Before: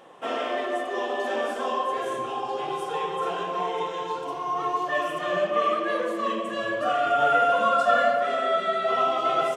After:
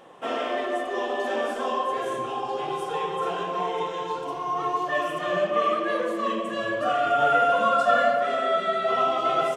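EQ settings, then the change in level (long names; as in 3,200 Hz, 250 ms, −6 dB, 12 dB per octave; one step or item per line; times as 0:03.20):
low-shelf EQ 200 Hz +4.5 dB
0.0 dB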